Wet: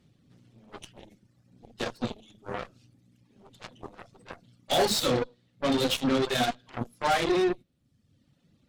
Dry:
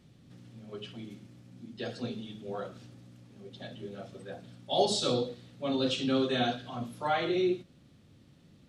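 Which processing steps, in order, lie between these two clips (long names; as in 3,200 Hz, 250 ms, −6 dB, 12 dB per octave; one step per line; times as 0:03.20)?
soft clipping −26.5 dBFS, distortion −12 dB
reverb reduction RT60 1.2 s
harmonic generator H 3 −21 dB, 4 −18 dB, 7 −17 dB, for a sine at −25 dBFS
level +8.5 dB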